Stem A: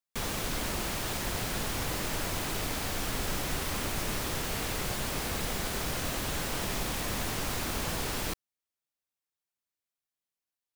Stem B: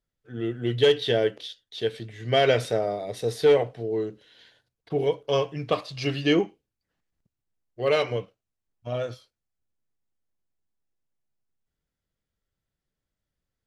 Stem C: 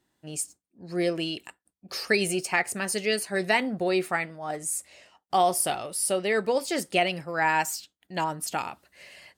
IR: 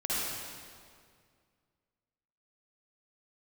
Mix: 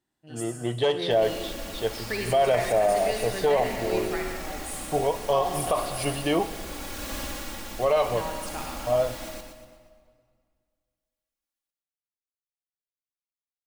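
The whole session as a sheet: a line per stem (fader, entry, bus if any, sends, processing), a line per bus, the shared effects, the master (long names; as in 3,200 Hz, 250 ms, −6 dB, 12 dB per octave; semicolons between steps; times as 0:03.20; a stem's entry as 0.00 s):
−4.0 dB, 0.95 s, send −20 dB, echo send −7 dB, comb filter 3.6 ms, depth 86%; automatic ducking −13 dB, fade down 0.55 s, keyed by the second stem
−3.0 dB, 0.00 s, send −22.5 dB, no echo send, downward expander −44 dBFS; flat-topped bell 820 Hz +12.5 dB 1.2 octaves
−12.0 dB, 0.00 s, muted 0:06.05–0:07.88, send −5 dB, no echo send, no processing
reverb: on, RT60 2.1 s, pre-delay 48 ms
echo: repeating echo 120 ms, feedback 44%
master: brickwall limiter −13.5 dBFS, peak gain reduction 10 dB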